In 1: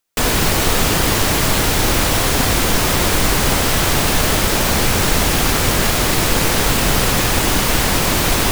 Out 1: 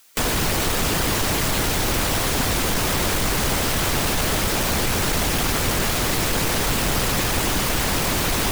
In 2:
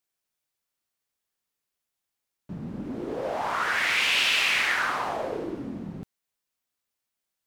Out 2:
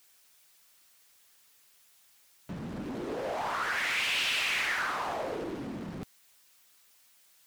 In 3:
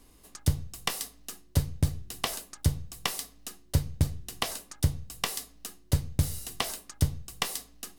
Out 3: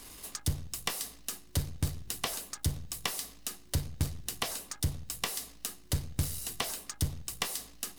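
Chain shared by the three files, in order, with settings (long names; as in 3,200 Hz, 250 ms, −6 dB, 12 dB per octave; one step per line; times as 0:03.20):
power curve on the samples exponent 0.7
harmonic and percussive parts rebalanced harmonic −5 dB
one half of a high-frequency compander encoder only
level −7 dB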